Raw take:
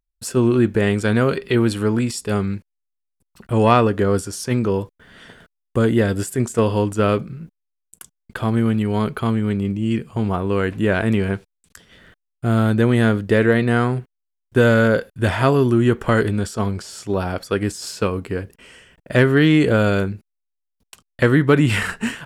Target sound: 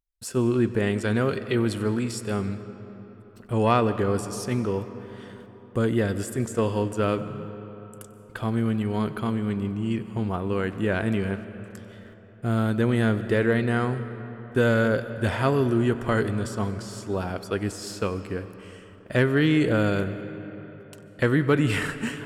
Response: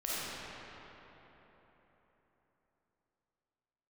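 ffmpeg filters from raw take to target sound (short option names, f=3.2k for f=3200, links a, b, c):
-filter_complex "[0:a]asplit=2[a][b];[1:a]atrim=start_sample=2205,adelay=94[c];[b][c]afir=irnorm=-1:irlink=0,volume=-18.5dB[d];[a][d]amix=inputs=2:normalize=0,volume=-6.5dB"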